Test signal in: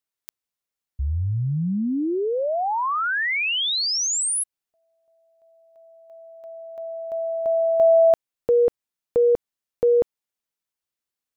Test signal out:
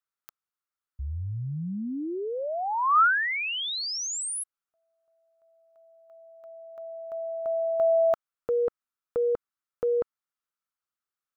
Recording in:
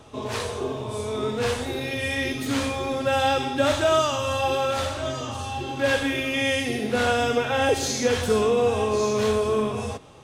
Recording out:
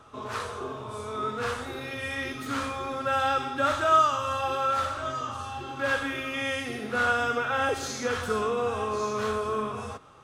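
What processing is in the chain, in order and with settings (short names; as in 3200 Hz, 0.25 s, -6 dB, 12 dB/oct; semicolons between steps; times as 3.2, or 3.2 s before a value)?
bell 1300 Hz +14.5 dB 0.65 oct; gain -8.5 dB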